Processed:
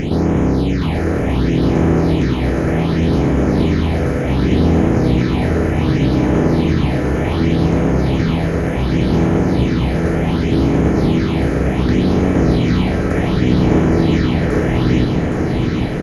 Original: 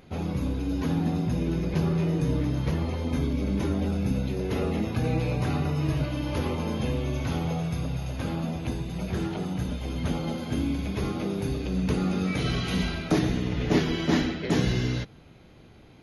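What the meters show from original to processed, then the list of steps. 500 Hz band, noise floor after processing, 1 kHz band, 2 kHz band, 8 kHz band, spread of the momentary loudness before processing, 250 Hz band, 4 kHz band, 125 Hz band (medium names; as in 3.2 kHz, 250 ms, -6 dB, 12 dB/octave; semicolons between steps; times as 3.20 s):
+14.0 dB, -18 dBFS, +12.5 dB, +11.5 dB, no reading, 6 LU, +13.0 dB, +7.5 dB, +12.0 dB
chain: spectral levelling over time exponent 0.2; treble shelf 4.3 kHz -11 dB; phase shifter stages 6, 0.67 Hz, lowest notch 230–4200 Hz; feedback delay 815 ms, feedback 53%, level -5 dB; trim +3.5 dB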